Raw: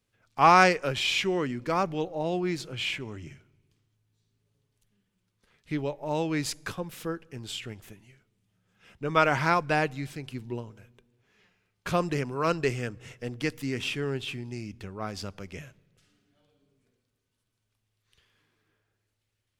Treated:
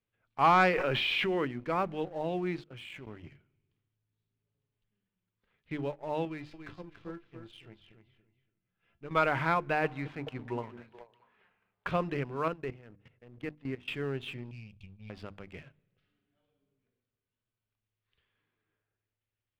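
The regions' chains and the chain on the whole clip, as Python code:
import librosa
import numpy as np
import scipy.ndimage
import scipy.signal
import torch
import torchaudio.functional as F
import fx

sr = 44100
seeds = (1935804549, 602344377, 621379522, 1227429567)

y = fx.chain(x, sr, fx.peak_eq(hz=74.0, db=-9.0, octaves=1.9),
    fx.env_flatten(amount_pct=100), at=(0.73, 1.45))
y = fx.chain(y, sr, fx.crossing_spikes(level_db=-37.5),
    fx.high_shelf(hz=10000.0, db=2.5),
    fx.level_steps(step_db=20), at=(2.6, 3.07))
y = fx.chain(y, sr, fx.low_shelf(hz=220.0, db=5.0),
    fx.comb_fb(f0_hz=340.0, decay_s=0.17, harmonics='all', damping=0.0, mix_pct=70),
    fx.echo_feedback(ms=284, feedback_pct=21, wet_db=-7.0), at=(6.25, 9.11))
y = fx.chain(y, sr, fx.peak_eq(hz=1000.0, db=11.5, octaves=1.7),
    fx.echo_stepped(ms=213, hz=230.0, octaves=1.4, feedback_pct=70, wet_db=-6), at=(9.84, 11.87))
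y = fx.chain(y, sr, fx.level_steps(step_db=15),
    fx.high_shelf(hz=2200.0, db=-7.5), at=(12.48, 13.88))
y = fx.chain(y, sr, fx.brickwall_bandstop(low_hz=230.0, high_hz=2200.0),
    fx.comb(ms=2.5, depth=0.4), at=(14.51, 15.1))
y = scipy.signal.sosfilt(scipy.signal.butter(4, 3400.0, 'lowpass', fs=sr, output='sos'), y)
y = fx.hum_notches(y, sr, base_hz=50, count=7)
y = fx.leveller(y, sr, passes=1)
y = y * librosa.db_to_amplitude(-7.5)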